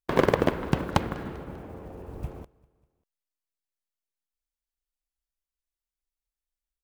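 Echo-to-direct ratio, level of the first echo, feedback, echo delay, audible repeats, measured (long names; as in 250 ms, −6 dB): −22.5 dB, −24.0 dB, 53%, 197 ms, 2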